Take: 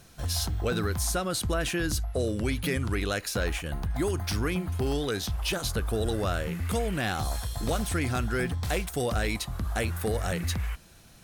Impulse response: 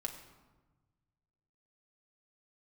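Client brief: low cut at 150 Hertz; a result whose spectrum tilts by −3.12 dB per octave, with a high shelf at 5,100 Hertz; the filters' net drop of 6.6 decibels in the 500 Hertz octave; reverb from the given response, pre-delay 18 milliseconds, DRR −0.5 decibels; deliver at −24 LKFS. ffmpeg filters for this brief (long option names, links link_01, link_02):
-filter_complex "[0:a]highpass=150,equalizer=frequency=500:width_type=o:gain=-8.5,highshelf=frequency=5100:gain=8,asplit=2[link_01][link_02];[1:a]atrim=start_sample=2205,adelay=18[link_03];[link_02][link_03]afir=irnorm=-1:irlink=0,volume=1dB[link_04];[link_01][link_04]amix=inputs=2:normalize=0,volume=3dB"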